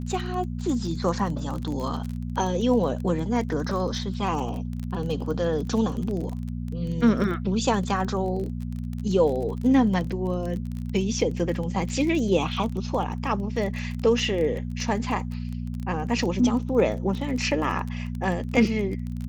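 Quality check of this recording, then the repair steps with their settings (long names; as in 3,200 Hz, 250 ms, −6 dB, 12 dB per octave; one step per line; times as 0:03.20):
surface crackle 23 per second −30 dBFS
mains hum 60 Hz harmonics 4 −31 dBFS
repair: click removal
hum removal 60 Hz, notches 4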